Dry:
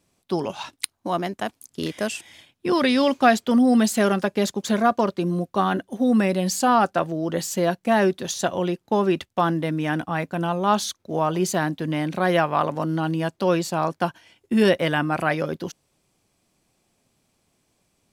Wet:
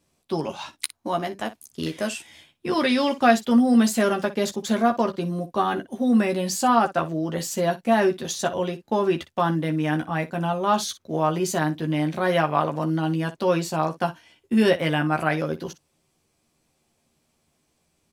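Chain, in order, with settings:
ambience of single reflections 13 ms −4.5 dB, 60 ms −15.5 dB
level −2.5 dB

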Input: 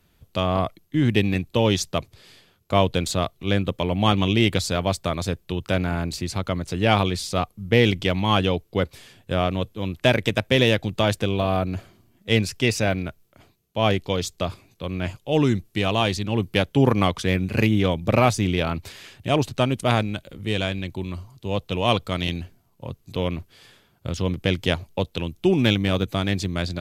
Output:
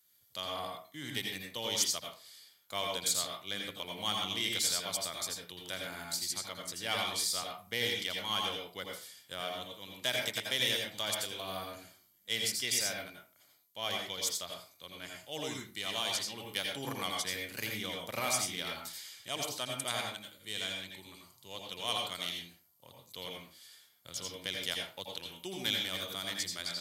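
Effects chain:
high-pass filter 82 Hz
first-order pre-emphasis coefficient 0.97
notch filter 2,600 Hz, Q 5.4
convolution reverb RT60 0.35 s, pre-delay 78 ms, DRR 0.5 dB

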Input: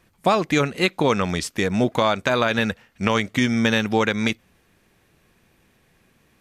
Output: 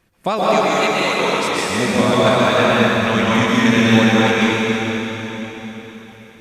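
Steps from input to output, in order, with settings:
0:00.39–0:01.70: high-pass filter 700 Hz 6 dB per octave
dense smooth reverb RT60 4.2 s, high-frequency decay 0.95×, pre-delay 110 ms, DRR −8.5 dB
level −2 dB

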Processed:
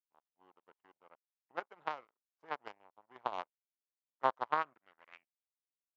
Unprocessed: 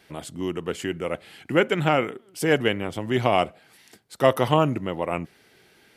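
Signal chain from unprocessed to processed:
in parallel at −7 dB: wave folding −21 dBFS
on the sum: power curve on the samples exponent 3
band-pass filter sweep 930 Hz → 4,500 Hz, 0:04.41–0:05.86
downsampling to 16,000 Hz
level +1 dB

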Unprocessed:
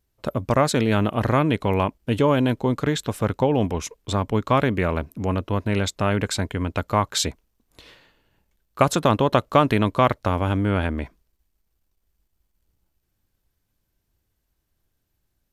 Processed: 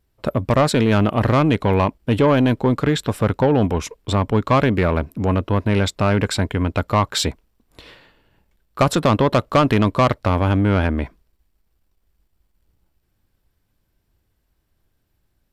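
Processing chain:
high-shelf EQ 4,300 Hz −6 dB
notch filter 6,400 Hz, Q 12
soft clipping −14 dBFS, distortion −14 dB
level +6 dB

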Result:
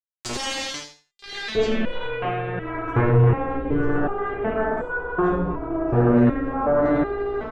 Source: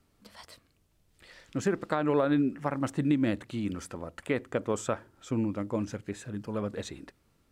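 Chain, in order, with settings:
notch filter 930 Hz, Q 7.9
leveller curve on the samples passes 2
spring reverb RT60 1.4 s, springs 34/51 ms, chirp 80 ms, DRR −8.5 dB
centre clipping without the shift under −41.5 dBFS
low-pass filter sweep 8,000 Hz → 1,200 Hz, 0:00.15–0:03.53
on a send: repeating echo 85 ms, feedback 21%, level −7 dB
on the sum: ring modulation 170 Hz
boost into a limiter +29 dB
step-sequenced resonator 2.7 Hz 120–490 Hz

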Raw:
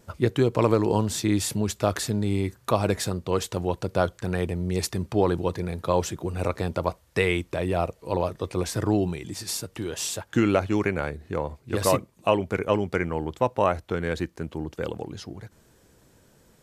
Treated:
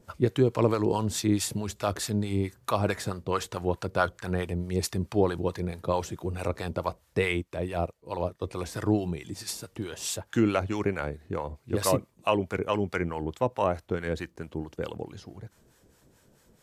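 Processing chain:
0:02.77–0:04.44: dynamic equaliser 1,400 Hz, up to +5 dB, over −41 dBFS, Q 1.1
two-band tremolo in antiphase 4.6 Hz, depth 70%, crossover 710 Hz
0:07.28–0:08.42: expander for the loud parts 1.5 to 1, over −49 dBFS

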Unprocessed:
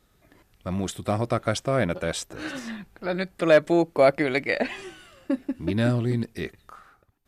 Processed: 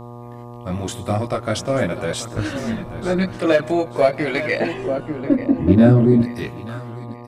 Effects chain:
repeating echo 886 ms, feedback 36%, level −14 dB
in parallel at −4.5 dB: soft clipping −19 dBFS, distortion −9 dB
0:04.72–0:06.20: on the sum: tilt shelving filter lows +8.5 dB, about 1,300 Hz
on a send at −21.5 dB: convolution reverb RT60 0.60 s, pre-delay 97 ms
on the sum: multi-voice chorus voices 2, 0.43 Hz, delay 20 ms, depth 2.1 ms
0:02.36–0:03.38: low-shelf EQ 230 Hz +12 dB
hum with harmonics 120 Hz, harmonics 10, −39 dBFS −4 dB per octave
every ending faded ahead of time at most 260 dB per second
level +3 dB

